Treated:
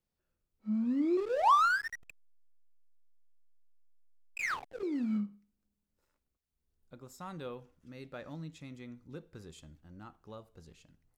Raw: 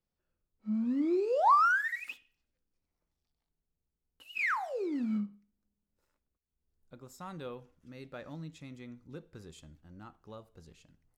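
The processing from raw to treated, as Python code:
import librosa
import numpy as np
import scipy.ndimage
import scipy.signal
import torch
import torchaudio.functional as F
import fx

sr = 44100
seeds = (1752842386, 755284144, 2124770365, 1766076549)

y = fx.backlash(x, sr, play_db=-28.0, at=(1.17, 4.83))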